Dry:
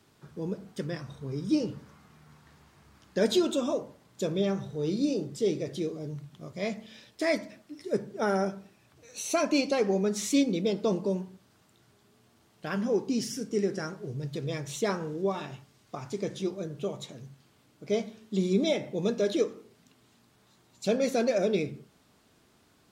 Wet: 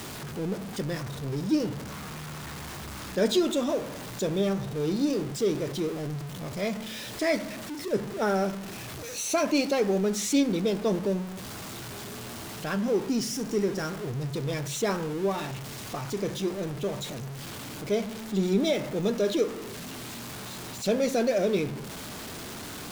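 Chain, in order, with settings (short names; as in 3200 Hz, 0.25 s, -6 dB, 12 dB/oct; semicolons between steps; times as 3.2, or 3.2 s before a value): zero-crossing step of -33.5 dBFS; attack slew limiter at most 440 dB/s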